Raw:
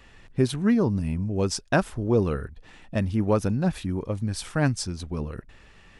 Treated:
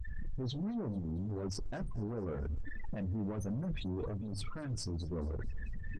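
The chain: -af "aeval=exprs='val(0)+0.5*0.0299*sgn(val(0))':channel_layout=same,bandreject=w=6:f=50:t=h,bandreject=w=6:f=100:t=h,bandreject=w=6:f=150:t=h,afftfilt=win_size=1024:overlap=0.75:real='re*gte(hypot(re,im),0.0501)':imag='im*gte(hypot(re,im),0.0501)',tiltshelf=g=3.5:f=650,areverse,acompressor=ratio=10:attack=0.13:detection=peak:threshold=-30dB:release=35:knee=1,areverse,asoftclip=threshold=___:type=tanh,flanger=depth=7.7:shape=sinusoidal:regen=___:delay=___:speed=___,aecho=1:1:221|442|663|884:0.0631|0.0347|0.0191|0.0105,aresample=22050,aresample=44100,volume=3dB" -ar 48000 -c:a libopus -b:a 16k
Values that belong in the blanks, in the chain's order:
-31.5dB, -53, 2.6, 0.74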